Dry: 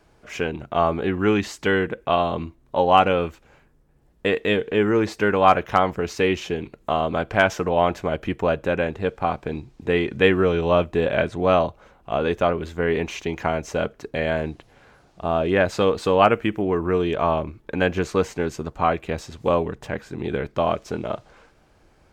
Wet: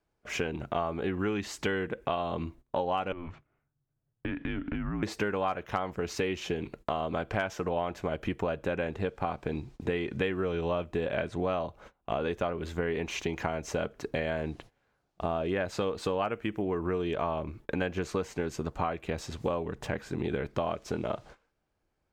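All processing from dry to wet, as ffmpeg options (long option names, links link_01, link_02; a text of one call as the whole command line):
ffmpeg -i in.wav -filter_complex "[0:a]asettb=1/sr,asplit=3[link_01][link_02][link_03];[link_01]atrim=end=3.124[link_04];[link_02]atrim=start=3.12:end=5.03,asetpts=PTS-STARTPTS,afade=type=in:duration=0.004:curve=qsin,afade=type=out:start_time=1.906:duration=0.004:curve=qsin,lowpass=2500,acompressor=threshold=-28dB:ratio=16:attack=3.2:release=140:knee=1:detection=peak,afreqshift=-170[link_05];[link_03]atrim=start=5.026[link_06];[link_04][link_05]acrossfade=duration=0.004:curve1=hsin:curve2=qsin[link_07];[link_07][link_06]acrossfade=duration=0.004:curve1=qsin:curve2=hsin,agate=range=-22dB:threshold=-46dB:ratio=16:detection=peak,acompressor=threshold=-28dB:ratio=6" out.wav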